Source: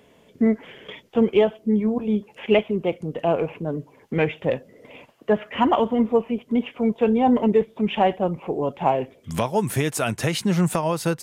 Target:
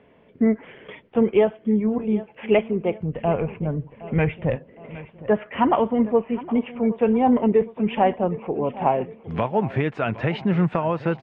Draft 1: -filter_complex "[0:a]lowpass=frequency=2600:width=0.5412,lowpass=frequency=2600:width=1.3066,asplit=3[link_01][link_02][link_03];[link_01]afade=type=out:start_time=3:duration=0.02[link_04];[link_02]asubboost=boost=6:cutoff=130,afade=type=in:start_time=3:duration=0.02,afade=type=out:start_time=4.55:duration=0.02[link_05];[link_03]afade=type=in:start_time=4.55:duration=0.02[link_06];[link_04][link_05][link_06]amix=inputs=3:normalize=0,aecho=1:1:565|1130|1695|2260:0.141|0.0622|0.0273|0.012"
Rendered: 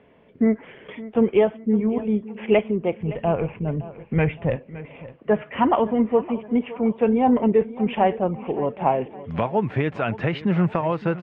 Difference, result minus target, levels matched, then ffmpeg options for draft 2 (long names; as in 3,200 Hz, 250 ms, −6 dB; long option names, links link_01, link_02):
echo 199 ms early
-filter_complex "[0:a]lowpass=frequency=2600:width=0.5412,lowpass=frequency=2600:width=1.3066,asplit=3[link_01][link_02][link_03];[link_01]afade=type=out:start_time=3:duration=0.02[link_04];[link_02]asubboost=boost=6:cutoff=130,afade=type=in:start_time=3:duration=0.02,afade=type=out:start_time=4.55:duration=0.02[link_05];[link_03]afade=type=in:start_time=4.55:duration=0.02[link_06];[link_04][link_05][link_06]amix=inputs=3:normalize=0,aecho=1:1:764|1528|2292|3056:0.141|0.0622|0.0273|0.012"